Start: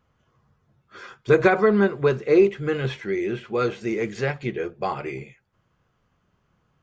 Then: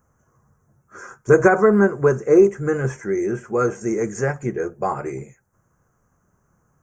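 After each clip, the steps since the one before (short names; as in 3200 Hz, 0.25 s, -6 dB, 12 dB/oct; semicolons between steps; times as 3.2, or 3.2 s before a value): EQ curve 1600 Hz 0 dB, 3900 Hz -30 dB, 6200 Hz +10 dB; gain +3.5 dB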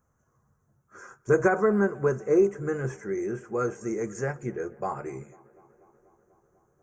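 tape echo 0.245 s, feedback 80%, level -23.5 dB, low-pass 2700 Hz; gain -8 dB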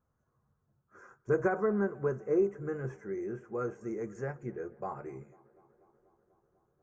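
LPF 1800 Hz 6 dB/oct; gain -6.5 dB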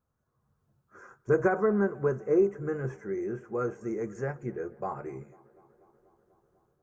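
AGC gain up to 6 dB; gain -2 dB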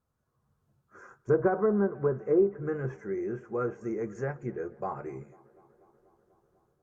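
treble ducked by the level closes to 1200 Hz, closed at -22 dBFS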